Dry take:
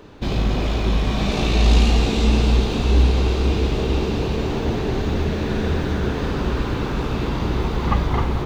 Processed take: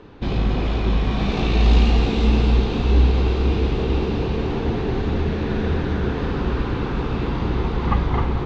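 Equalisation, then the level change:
high-frequency loss of the air 150 metres
notch filter 610 Hz, Q 12
0.0 dB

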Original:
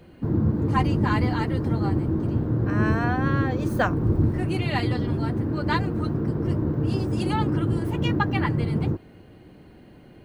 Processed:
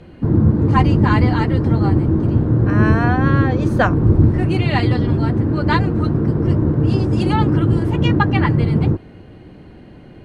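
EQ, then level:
high-frequency loss of the air 54 metres
low-shelf EQ 140 Hz +3.5 dB
+7.0 dB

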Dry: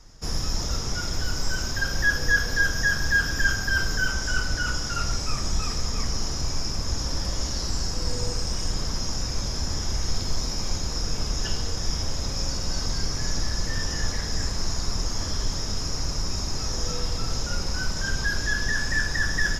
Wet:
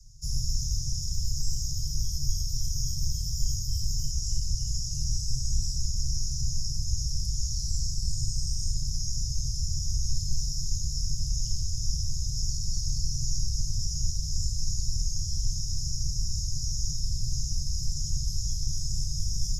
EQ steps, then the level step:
Chebyshev band-stop filter 140–2,700 Hz, order 4
Chebyshev band-stop filter 190–5,900 Hz, order 3
parametric band 340 Hz +12 dB 1.4 octaves
0.0 dB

